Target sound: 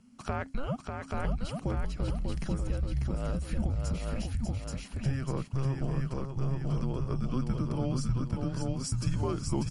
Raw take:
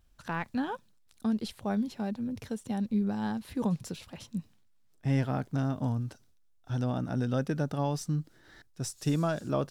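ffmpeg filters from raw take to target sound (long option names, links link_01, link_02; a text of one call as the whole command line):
ffmpeg -i in.wav -filter_complex "[0:a]equalizer=frequency=440:width_type=o:width=0.52:gain=10,bandreject=frequency=3900:width=5.3,asplit=2[link_01][link_02];[link_02]aecho=0:1:831:0.531[link_03];[link_01][link_03]amix=inputs=2:normalize=0,aeval=exprs='0.2*(cos(1*acos(clip(val(0)/0.2,-1,1)))-cos(1*PI/2))+0.00141*(cos(2*acos(clip(val(0)/0.2,-1,1)))-cos(2*PI/2))+0.00282*(cos(4*acos(clip(val(0)/0.2,-1,1)))-cos(4*PI/2))':channel_layout=same,acompressor=threshold=-38dB:ratio=2.5,afreqshift=-270,asplit=2[link_04][link_05];[link_05]aecho=0:1:594:0.562[link_06];[link_04][link_06]amix=inputs=2:normalize=0,volume=6.5dB" -ar 44100 -c:a libmp3lame -b:a 48k out.mp3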